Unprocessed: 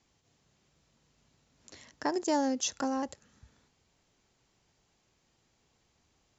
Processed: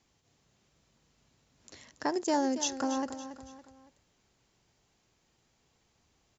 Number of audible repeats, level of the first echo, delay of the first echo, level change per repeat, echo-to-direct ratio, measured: 3, −11.5 dB, 280 ms, −7.5 dB, −10.5 dB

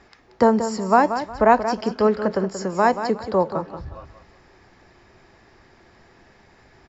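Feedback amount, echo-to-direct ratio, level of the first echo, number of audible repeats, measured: 27%, −9.5 dB, −10.0 dB, 3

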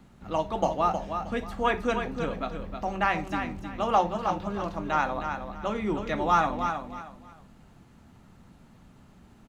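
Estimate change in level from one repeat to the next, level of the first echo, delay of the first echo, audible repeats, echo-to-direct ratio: −11.5 dB, −7.0 dB, 314 ms, 3, −6.5 dB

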